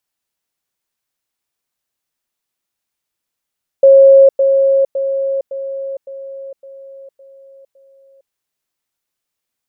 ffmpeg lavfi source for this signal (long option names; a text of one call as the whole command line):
ffmpeg -f lavfi -i "aevalsrc='pow(10,(-2.5-6*floor(t/0.56))/20)*sin(2*PI*544*t)*clip(min(mod(t,0.56),0.46-mod(t,0.56))/0.005,0,1)':duration=4.48:sample_rate=44100" out.wav